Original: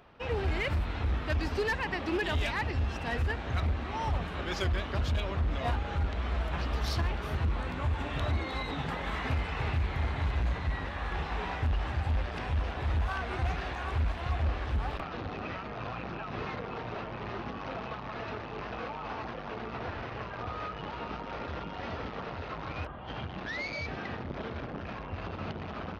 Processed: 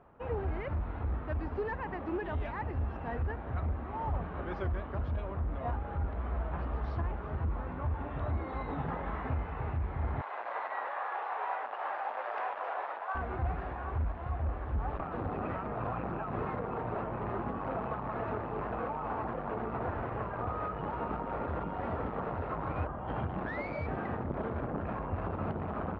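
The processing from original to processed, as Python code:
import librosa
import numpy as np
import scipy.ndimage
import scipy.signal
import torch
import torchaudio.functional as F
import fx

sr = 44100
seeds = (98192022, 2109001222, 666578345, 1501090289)

y = fx.highpass(x, sr, hz=580.0, slope=24, at=(10.21, 13.15))
y = scipy.signal.sosfilt(scipy.signal.cheby1(2, 1.0, 1100.0, 'lowpass', fs=sr, output='sos'), y)
y = fx.rider(y, sr, range_db=10, speed_s=0.5)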